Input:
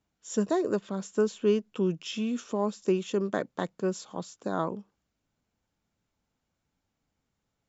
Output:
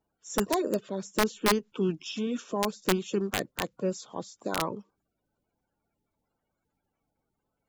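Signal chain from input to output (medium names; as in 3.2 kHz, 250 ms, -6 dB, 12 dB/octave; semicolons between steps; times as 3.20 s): coarse spectral quantiser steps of 30 dB; integer overflow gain 16.5 dB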